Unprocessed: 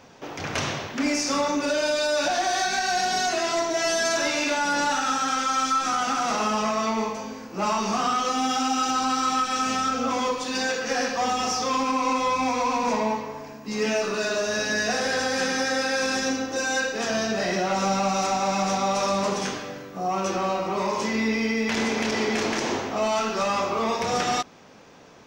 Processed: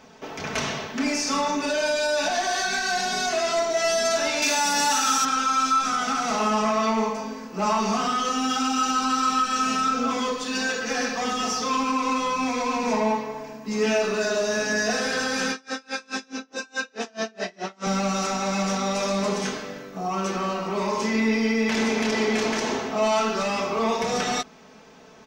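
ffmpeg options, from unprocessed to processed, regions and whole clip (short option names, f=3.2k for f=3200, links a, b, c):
-filter_complex "[0:a]asettb=1/sr,asplit=3[a][b][c];[a]atrim=end=4.424[d];[b]atrim=start=4.42:end=5.25,asetpts=PTS-STARTPTS,afade=t=in:d=0.004:c=qsin,afade=t=out:st=0.826:d=0.004:c=qsin,highpass=98,aemphasis=mode=production:type=75fm[e];[c]atrim=start=5.246[f];[d][e]acrossfade=d=0.004:c1=hsin:c2=qsin[g];[g][f]acrossfade=d=0.004:c1=qsin:c2=hsin,asettb=1/sr,asplit=3[h][i][j];[h]atrim=end=15.524[k];[i]atrim=start=15.52:end=17.87,asetpts=PTS-STARTPTS,afade=t=in:d=0.004:c=qsin,afade=t=out:st=2.346:d=0.004:c=qsin,highpass=200,lowpass=7.6k,aeval=exprs='val(0)*pow(10,-33*(0.5-0.5*cos(2*PI*4.7*n/s))/20)':c=same[l];[j]atrim=start=17.866[m];[k][l]acrossfade=d=0.004:c1=hsin:c2=qsin[n];[n][m]acrossfade=d=0.004:c1=qsin:c2=hsin,aecho=1:1:4.6:0.58,acontrast=69,volume=-7.5dB"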